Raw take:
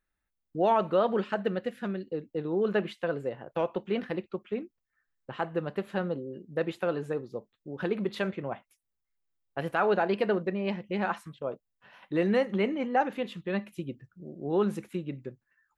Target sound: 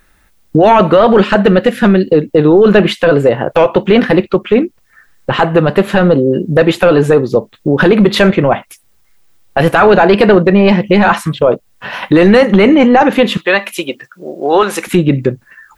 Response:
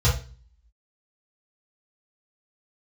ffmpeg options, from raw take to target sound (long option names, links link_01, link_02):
-filter_complex "[0:a]asettb=1/sr,asplit=3[link_01][link_02][link_03];[link_01]atrim=end=13.374[link_04];[link_02]atrim=start=13.37:end=14.87,asetpts=PTS-STARTPTS,afade=type=in:duration=0.004:curve=qsin,afade=type=out:start_time=1.496:duration=0.004:curve=qsin,highpass=740[link_05];[link_03]atrim=start=14.866[link_06];[link_04][link_05]acrossfade=duration=0.004:curve1=hsin:curve2=qsin[link_07];[link_07][link_06]acrossfade=duration=0.004:curve1=qsin:curve2=hsin,acompressor=threshold=-45dB:ratio=1.5,apsyclip=33.5dB,volume=-1.5dB"